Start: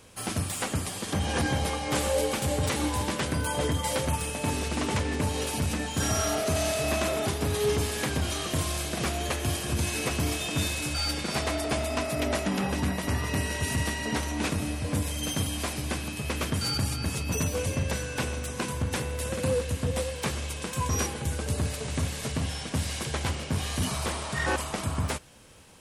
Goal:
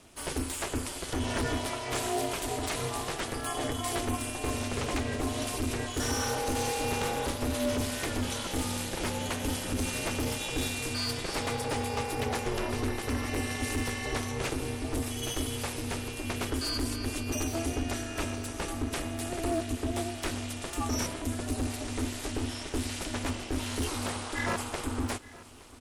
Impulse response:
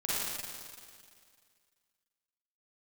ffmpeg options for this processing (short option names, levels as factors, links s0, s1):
-filter_complex "[0:a]asettb=1/sr,asplit=3[s0][s1][s2];[s0]atrim=end=1.594[s3];[s1]atrim=start=1.59:end=3.78,asetpts=PTS-STARTPTS,afade=t=in:d=0.004:c=qsin,afade=t=out:st=2.186:d=0.004:c=qsin,lowshelf=f=180:g=-9[s4];[s2]atrim=start=3.776[s5];[s3][s4]acrossfade=d=0.004:c1=hsin:c2=qsin[s6];[s6][s5]acrossfade=d=0.004:c1=qsin:c2=hsin,asoftclip=type=hard:threshold=0.0841,aecho=1:1:867|1734|2601|3468|4335:0.1|0.059|0.0348|0.0205|0.0121,aeval=exprs='val(0)*sin(2*PI*170*n/s)':c=same"